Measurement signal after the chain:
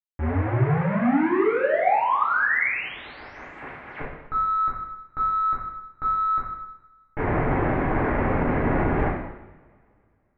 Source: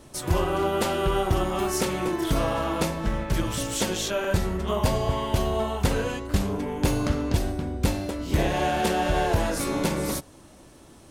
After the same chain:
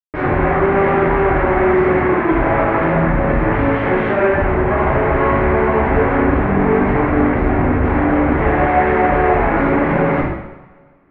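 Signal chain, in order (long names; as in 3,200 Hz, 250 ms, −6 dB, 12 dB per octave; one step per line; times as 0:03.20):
comparator with hysteresis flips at −38.5 dBFS
Chebyshev low-pass filter 2,100 Hz, order 4
coupled-rooms reverb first 0.88 s, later 2.6 s, from −24 dB, DRR −8 dB
level +3.5 dB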